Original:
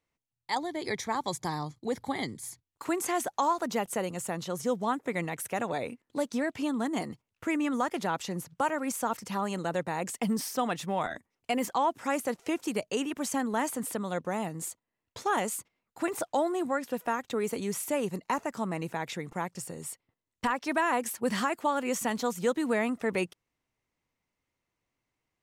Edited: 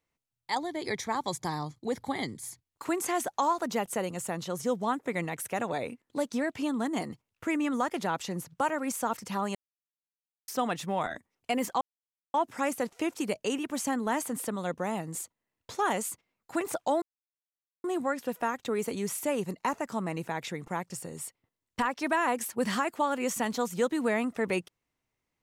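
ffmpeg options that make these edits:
ffmpeg -i in.wav -filter_complex "[0:a]asplit=5[link_01][link_02][link_03][link_04][link_05];[link_01]atrim=end=9.55,asetpts=PTS-STARTPTS,afade=type=out:start_time=9.546:duration=0.004:curve=hsin[link_06];[link_02]atrim=start=9.55:end=10.48,asetpts=PTS-STARTPTS,volume=0[link_07];[link_03]atrim=start=10.48:end=11.81,asetpts=PTS-STARTPTS,afade=type=in:duration=0.004:curve=hsin,afade=type=out:start_time=1.326:duration=0.004:curve=hsin,apad=pad_dur=0.53[link_08];[link_04]atrim=start=11.81:end=16.49,asetpts=PTS-STARTPTS,afade=type=in:duration=0.004:curve=hsin,afade=type=out:start_time=4.676:duration=0.004:curve=hsin,apad=pad_dur=0.82[link_09];[link_05]atrim=start=16.49,asetpts=PTS-STARTPTS,afade=type=in:duration=0.004:curve=hsin[link_10];[link_06][link_07][link_08][link_09][link_10]concat=n=5:v=0:a=1" out.wav

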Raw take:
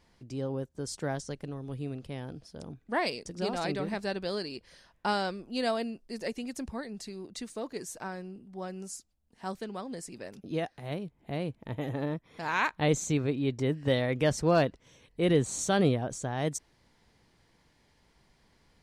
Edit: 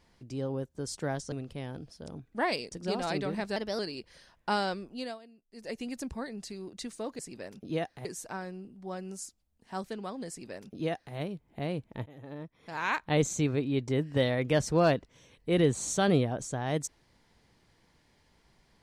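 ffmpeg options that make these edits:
ffmpeg -i in.wav -filter_complex "[0:a]asplit=9[link_01][link_02][link_03][link_04][link_05][link_06][link_07][link_08][link_09];[link_01]atrim=end=1.322[link_10];[link_02]atrim=start=1.858:end=4.104[link_11];[link_03]atrim=start=4.1:end=4.36,asetpts=PTS-STARTPTS,asetrate=49833,aresample=44100[link_12];[link_04]atrim=start=4.356:end=5.76,asetpts=PTS-STARTPTS,afade=type=out:start_time=1.034:duration=0.37:silence=0.0944061[link_13];[link_05]atrim=start=5.76:end=6.05,asetpts=PTS-STARTPTS,volume=-20.5dB[link_14];[link_06]atrim=start=6.05:end=7.762,asetpts=PTS-STARTPTS,afade=type=in:duration=0.37:silence=0.0944061[link_15];[link_07]atrim=start=9.998:end=10.862[link_16];[link_08]atrim=start=7.758:end=11.77,asetpts=PTS-STARTPTS,afade=type=out:start_time=4.008:duration=0.004:curve=hsin:silence=0.0891251[link_17];[link_09]atrim=start=11.77,asetpts=PTS-STARTPTS,afade=type=in:duration=1.12:silence=0.0891251[link_18];[link_10][link_11]acrossfade=duration=0.004:curve1=hsin:curve2=hsin[link_19];[link_19][link_12]acrossfade=duration=0.004:curve1=hsin:curve2=hsin[link_20];[link_13][link_14][link_15]concat=n=3:v=0:a=1[link_21];[link_20][link_21]acrossfade=duration=0.004:curve1=hsin:curve2=hsin[link_22];[link_22][link_16]acrossfade=duration=0.004:curve1=hsin:curve2=hsin[link_23];[link_17][link_18]concat=n=2:v=0:a=1[link_24];[link_23][link_24]acrossfade=duration=0.004:curve1=hsin:curve2=hsin" out.wav

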